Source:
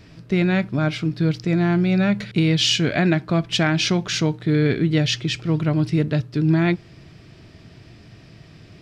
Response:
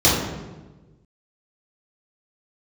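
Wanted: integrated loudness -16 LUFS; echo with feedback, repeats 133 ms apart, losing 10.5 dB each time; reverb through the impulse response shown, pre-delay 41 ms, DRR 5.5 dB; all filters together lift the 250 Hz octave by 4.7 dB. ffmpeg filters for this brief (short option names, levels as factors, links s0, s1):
-filter_complex "[0:a]equalizer=f=250:t=o:g=8,aecho=1:1:133|266|399:0.299|0.0896|0.0269,asplit=2[s0][s1];[1:a]atrim=start_sample=2205,adelay=41[s2];[s1][s2]afir=irnorm=-1:irlink=0,volume=0.0447[s3];[s0][s3]amix=inputs=2:normalize=0,volume=0.631"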